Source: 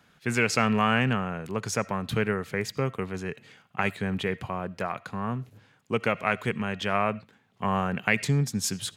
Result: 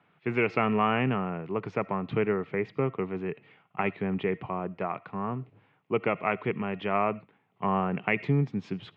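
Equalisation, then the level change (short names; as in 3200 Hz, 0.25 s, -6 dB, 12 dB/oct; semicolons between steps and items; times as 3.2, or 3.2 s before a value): dynamic EQ 280 Hz, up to +6 dB, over -41 dBFS, Q 0.81; speaker cabinet 150–2500 Hz, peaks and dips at 230 Hz -9 dB, 530 Hz -5 dB, 1600 Hz -10 dB; 0.0 dB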